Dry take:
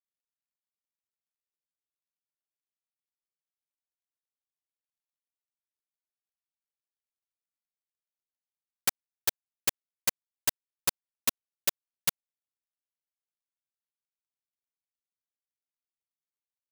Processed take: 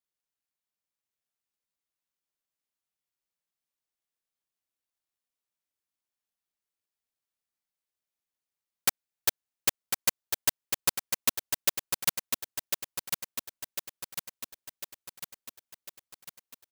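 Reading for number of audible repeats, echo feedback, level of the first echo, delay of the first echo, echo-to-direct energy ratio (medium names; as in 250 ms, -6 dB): 6, 55%, -5.5 dB, 1050 ms, -4.0 dB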